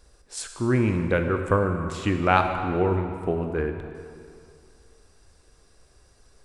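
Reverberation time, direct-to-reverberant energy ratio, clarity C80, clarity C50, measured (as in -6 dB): 2.4 s, 5.0 dB, 7.0 dB, 6.0 dB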